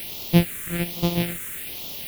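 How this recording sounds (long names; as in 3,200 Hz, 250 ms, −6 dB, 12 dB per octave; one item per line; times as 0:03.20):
a buzz of ramps at a fixed pitch in blocks of 256 samples
tremolo triangle 6.1 Hz, depth 80%
a quantiser's noise floor 6 bits, dither triangular
phaser sweep stages 4, 1.2 Hz, lowest notch 790–1,600 Hz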